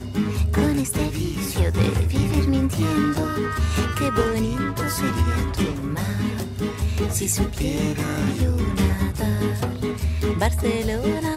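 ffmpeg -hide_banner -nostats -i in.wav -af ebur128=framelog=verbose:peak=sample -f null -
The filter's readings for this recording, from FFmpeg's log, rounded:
Integrated loudness:
  I:         -22.9 LUFS
  Threshold: -32.9 LUFS
Loudness range:
  LRA:         2.2 LU
  Threshold: -42.9 LUFS
  LRA low:   -24.0 LUFS
  LRA high:  -21.8 LUFS
Sample peak:
  Peak:       -6.7 dBFS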